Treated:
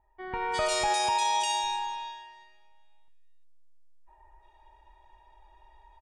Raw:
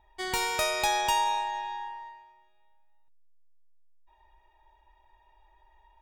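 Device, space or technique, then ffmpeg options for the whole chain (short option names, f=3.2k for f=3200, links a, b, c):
low-bitrate web radio: -filter_complex "[0:a]asettb=1/sr,asplit=3[a][b][c];[a]atrim=end=0.904[d];[b]atrim=start=0.9:end=1.64,asetpts=PTS-STARTPTS,afade=t=in:d=0.004:c=qsin,afade=t=out:st=0.736:d=0.004:c=qsin,highpass=f=91:p=1[e];[c]atrim=start=1.636[f];[d][e]acrossfade=d=0.004:c1=hsin:c2=qsin[g];[g][f]acrossfade=d=0.004:c1=qsin:c2=hsin,acrossover=split=2100[h][i];[i]adelay=350[j];[h][j]amix=inputs=2:normalize=0,dynaudnorm=f=180:g=5:m=11dB,alimiter=limit=-12.5dB:level=0:latency=1:release=41,volume=-6dB" -ar 22050 -c:a aac -b:a 48k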